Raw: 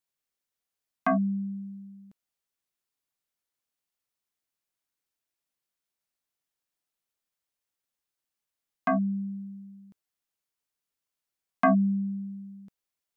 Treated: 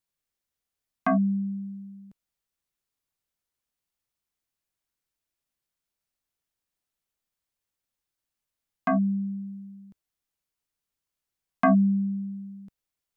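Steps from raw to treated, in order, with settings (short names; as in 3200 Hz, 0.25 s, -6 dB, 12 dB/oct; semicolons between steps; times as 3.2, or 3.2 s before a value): low shelf 130 Hz +10.5 dB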